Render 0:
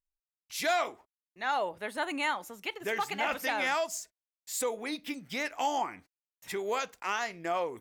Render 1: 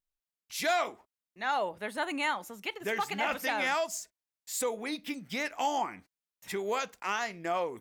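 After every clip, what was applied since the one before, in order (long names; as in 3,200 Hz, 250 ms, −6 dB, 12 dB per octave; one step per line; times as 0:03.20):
parametric band 200 Hz +4.5 dB 0.38 octaves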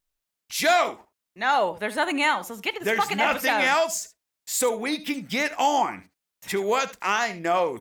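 single-tap delay 75 ms −16.5 dB
level +8.5 dB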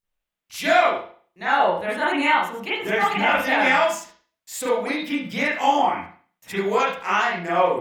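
convolution reverb, pre-delay 34 ms, DRR −9 dB
level −6.5 dB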